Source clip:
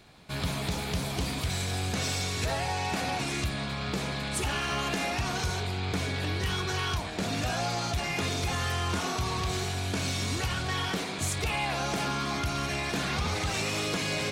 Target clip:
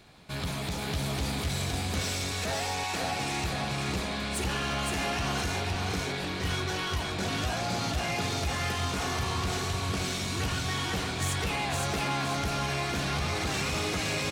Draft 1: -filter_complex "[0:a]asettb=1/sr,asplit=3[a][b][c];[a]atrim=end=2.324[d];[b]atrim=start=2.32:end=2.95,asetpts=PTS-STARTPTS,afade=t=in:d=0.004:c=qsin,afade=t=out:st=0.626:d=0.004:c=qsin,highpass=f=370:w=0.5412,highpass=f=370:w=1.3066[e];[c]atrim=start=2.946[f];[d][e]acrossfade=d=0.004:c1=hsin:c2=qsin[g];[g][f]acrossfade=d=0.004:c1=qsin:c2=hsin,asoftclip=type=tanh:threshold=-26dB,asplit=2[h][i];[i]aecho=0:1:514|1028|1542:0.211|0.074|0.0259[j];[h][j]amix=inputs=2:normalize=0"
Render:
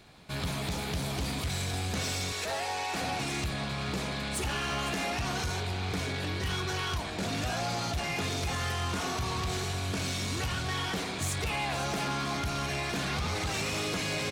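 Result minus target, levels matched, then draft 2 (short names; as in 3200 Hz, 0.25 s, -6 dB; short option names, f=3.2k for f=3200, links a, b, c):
echo-to-direct -10.5 dB
-filter_complex "[0:a]asettb=1/sr,asplit=3[a][b][c];[a]atrim=end=2.324[d];[b]atrim=start=2.32:end=2.95,asetpts=PTS-STARTPTS,afade=t=in:d=0.004:c=qsin,afade=t=out:st=0.626:d=0.004:c=qsin,highpass=f=370:w=0.5412,highpass=f=370:w=1.3066[e];[c]atrim=start=2.946[f];[d][e]acrossfade=d=0.004:c1=hsin:c2=qsin[g];[g][f]acrossfade=d=0.004:c1=qsin:c2=hsin,asoftclip=type=tanh:threshold=-26dB,asplit=2[h][i];[i]aecho=0:1:514|1028|1542|2056|2570:0.708|0.248|0.0867|0.0304|0.0106[j];[h][j]amix=inputs=2:normalize=0"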